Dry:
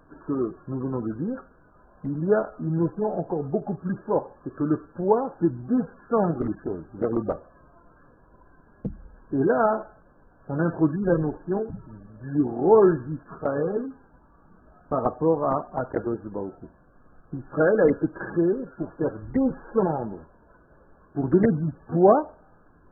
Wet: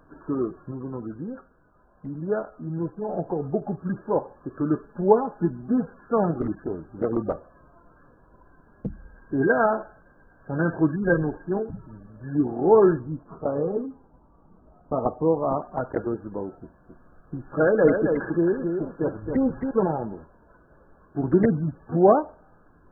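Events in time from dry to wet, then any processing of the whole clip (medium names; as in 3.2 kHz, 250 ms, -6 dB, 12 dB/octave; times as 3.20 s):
0.71–3.09 s: gain -5 dB
4.75–5.72 s: comb 4.8 ms, depth 54%
8.88–11.49 s: small resonant body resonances 1.6 kHz, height 14 dB, ringing for 60 ms
12.99–15.62 s: low-pass 1.1 kHz 24 dB/octave
16.58–19.71 s: delay 269 ms -5.5 dB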